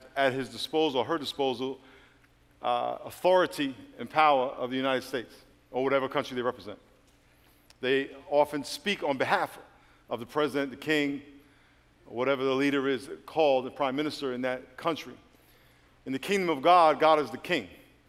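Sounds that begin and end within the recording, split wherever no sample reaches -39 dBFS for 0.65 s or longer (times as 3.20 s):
2.63–6.75 s
7.70–11.20 s
12.08–15.13 s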